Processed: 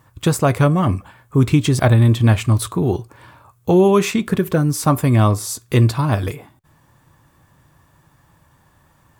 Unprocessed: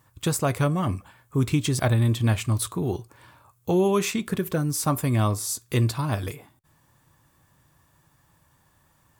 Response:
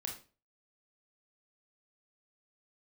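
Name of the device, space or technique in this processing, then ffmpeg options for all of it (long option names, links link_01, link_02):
behind a face mask: -af "highshelf=frequency=3400:gain=-7,volume=8.5dB"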